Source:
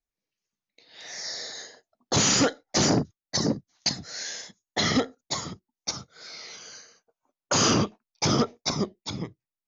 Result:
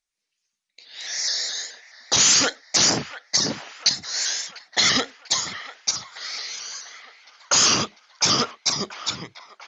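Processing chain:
tilt shelving filter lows −8.5 dB
brickwall limiter −10.5 dBFS, peak gain reduction 5 dB
on a send: delay with a band-pass on its return 695 ms, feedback 59%, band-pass 1,400 Hz, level −12 dB
on the sum: downsampling to 22,050 Hz
pitch modulation by a square or saw wave saw up 4.7 Hz, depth 100 cents
level +2.5 dB

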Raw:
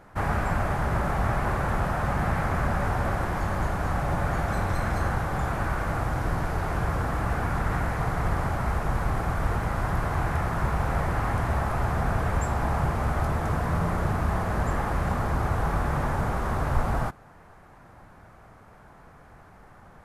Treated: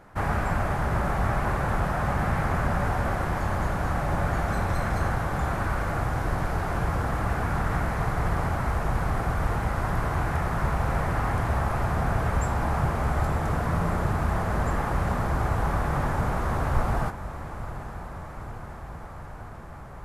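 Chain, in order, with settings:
feedback delay with all-pass diffusion 856 ms, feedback 75%, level −13.5 dB

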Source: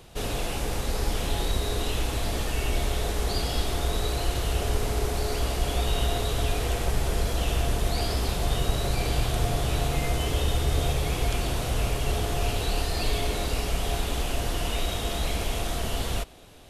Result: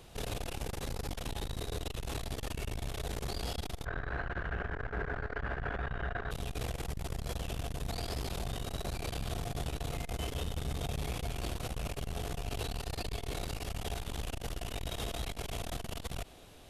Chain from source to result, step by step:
0:03.85–0:06.31: low-pass with resonance 1,600 Hz, resonance Q 8.3
brickwall limiter −20.5 dBFS, peak gain reduction 9.5 dB
saturating transformer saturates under 120 Hz
level −4 dB

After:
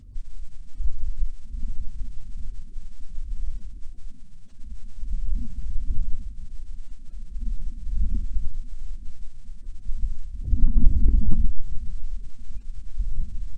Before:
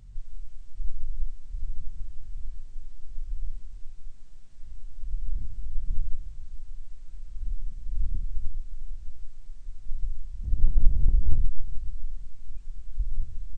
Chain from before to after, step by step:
spectral magnitudes quantised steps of 30 dB
hollow resonant body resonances 230 Hz, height 11 dB, ringing for 45 ms
level +2 dB

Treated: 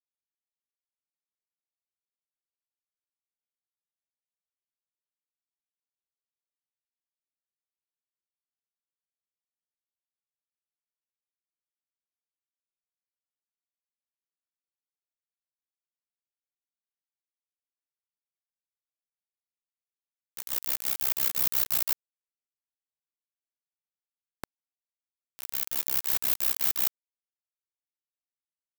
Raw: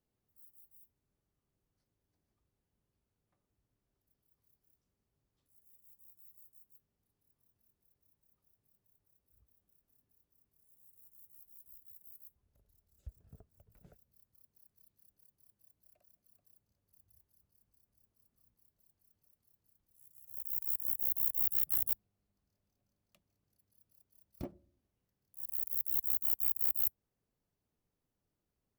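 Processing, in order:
sub-harmonics by changed cycles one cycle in 2, inverted
backwards echo 160 ms −9.5 dB
bit reduction 5 bits
level +4 dB

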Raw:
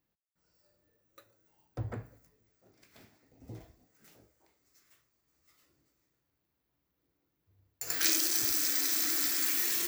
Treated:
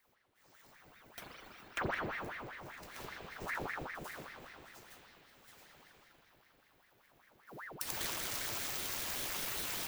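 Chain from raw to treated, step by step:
compressing power law on the bin magnitudes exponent 0.66
parametric band 110 Hz +10.5 dB 1.1 octaves
downward compressor 8 to 1, threshold −45 dBFS, peak gain reduction 21 dB
spring reverb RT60 3.4 s, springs 40 ms, chirp 30 ms, DRR −5.5 dB
ring modulator whose carrier an LFO sweeps 1,100 Hz, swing 80%, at 5.1 Hz
level +9.5 dB

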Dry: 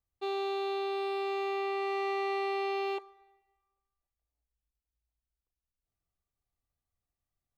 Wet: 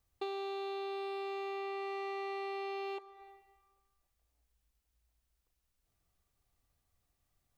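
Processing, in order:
downward compressor 6 to 1, threshold −48 dBFS, peak gain reduction 17 dB
level +9.5 dB

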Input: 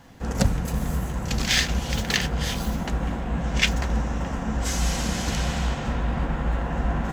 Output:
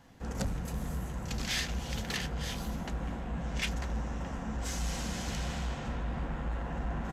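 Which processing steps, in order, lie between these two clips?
soft clipping −17.5 dBFS, distortion −15 dB
downsampling to 32,000 Hz
level −8.5 dB

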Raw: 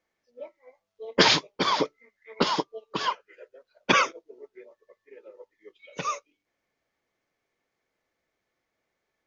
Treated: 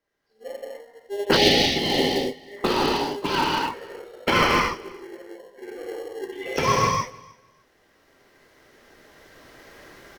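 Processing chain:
camcorder AGC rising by 8.4 dB per second
parametric band 160 Hz −6 dB 1.2 octaves
on a send: repeating echo 279 ms, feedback 19%, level −24 dB
on the sum: reverb whose tail is shaped and stops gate 290 ms flat, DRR −5.5 dB
in parallel at −8 dB: decimation without filtering 33×
on the sum: gain on a spectral selection 0:01.25–0:02.34, 930–1,900 Hz −20 dB
speed change −9%
level −3.5 dB

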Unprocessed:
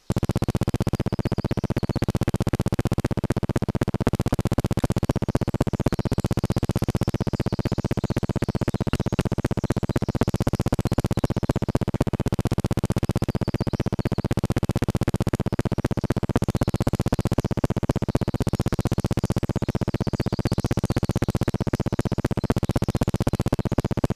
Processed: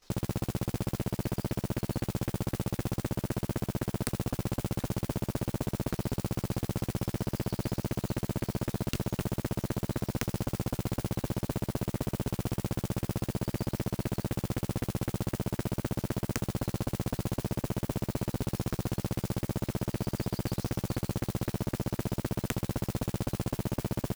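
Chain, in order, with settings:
noise that follows the level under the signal 17 dB
output level in coarse steps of 15 dB
wrap-around overflow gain 16.5 dB

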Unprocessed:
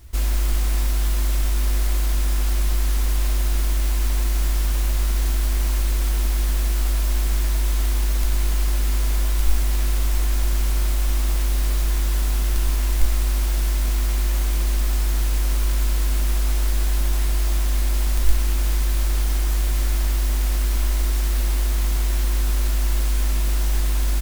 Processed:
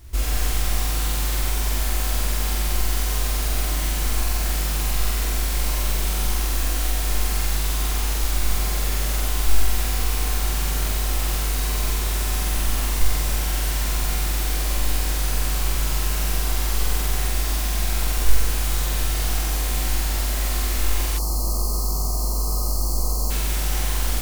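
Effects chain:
flutter between parallel walls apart 8 metres, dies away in 1.4 s
gain on a spectral selection 0:21.18–0:23.31, 1,300–4,100 Hz −26 dB

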